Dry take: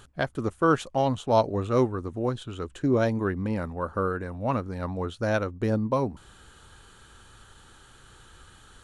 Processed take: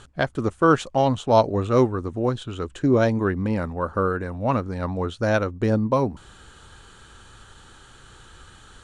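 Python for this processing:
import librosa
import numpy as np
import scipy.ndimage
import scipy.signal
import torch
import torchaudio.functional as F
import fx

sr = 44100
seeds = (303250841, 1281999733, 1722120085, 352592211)

y = scipy.signal.sosfilt(scipy.signal.butter(4, 9300.0, 'lowpass', fs=sr, output='sos'), x)
y = y * librosa.db_to_amplitude(4.5)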